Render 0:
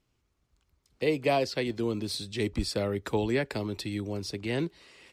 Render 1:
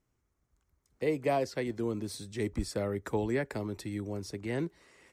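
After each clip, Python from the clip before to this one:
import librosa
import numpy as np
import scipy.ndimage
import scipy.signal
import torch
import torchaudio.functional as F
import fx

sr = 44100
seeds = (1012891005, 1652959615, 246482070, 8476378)

y = fx.band_shelf(x, sr, hz=3500.0, db=-8.5, octaves=1.2)
y = y * 10.0 ** (-3.0 / 20.0)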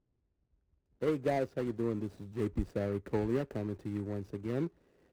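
y = scipy.ndimage.median_filter(x, 41, mode='constant')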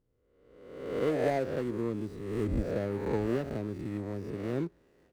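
y = fx.spec_swells(x, sr, rise_s=1.03)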